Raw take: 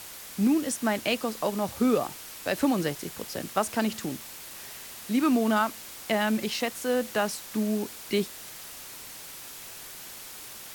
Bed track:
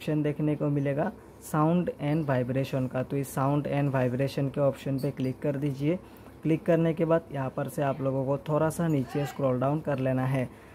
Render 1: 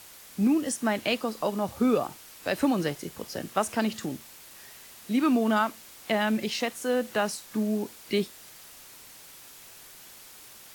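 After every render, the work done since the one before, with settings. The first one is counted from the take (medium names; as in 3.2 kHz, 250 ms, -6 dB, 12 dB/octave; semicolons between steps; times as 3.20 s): noise print and reduce 6 dB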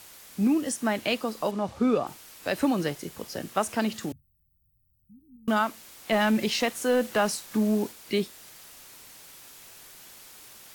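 1.51–2.07 s: distance through air 63 m; 4.12–5.48 s: inverse Chebyshev band-stop 630–8700 Hz, stop band 80 dB; 6.12–7.92 s: waveshaping leveller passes 1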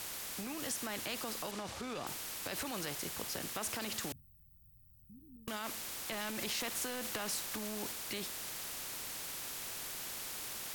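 peak limiter -23.5 dBFS, peak gain reduction 10.5 dB; spectrum-flattening compressor 2:1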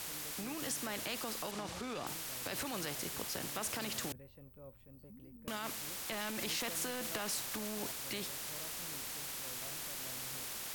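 add bed track -29 dB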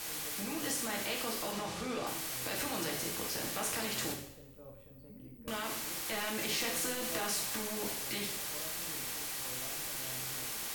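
two-slope reverb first 0.66 s, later 1.8 s, from -24 dB, DRR -1.5 dB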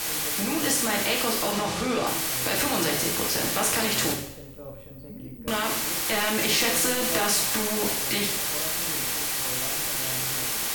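trim +11.5 dB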